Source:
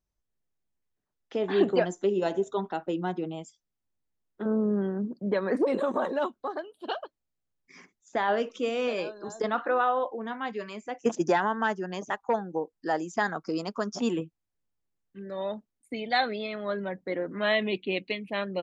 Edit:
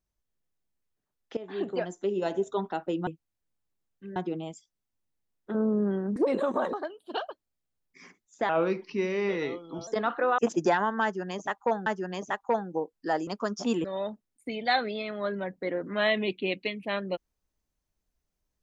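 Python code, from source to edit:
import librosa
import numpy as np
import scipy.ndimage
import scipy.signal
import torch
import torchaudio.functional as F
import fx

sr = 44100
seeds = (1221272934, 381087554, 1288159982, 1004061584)

y = fx.edit(x, sr, fx.fade_in_from(start_s=1.37, length_s=1.15, floor_db=-15.0),
    fx.cut(start_s=5.07, length_s=0.49),
    fx.cut(start_s=6.13, length_s=0.34),
    fx.speed_span(start_s=8.23, length_s=1.12, speed=0.81),
    fx.cut(start_s=9.86, length_s=1.15),
    fx.repeat(start_s=11.66, length_s=0.83, count=2),
    fx.cut(start_s=13.07, length_s=0.56),
    fx.move(start_s=14.2, length_s=1.09, to_s=3.07), tone=tone)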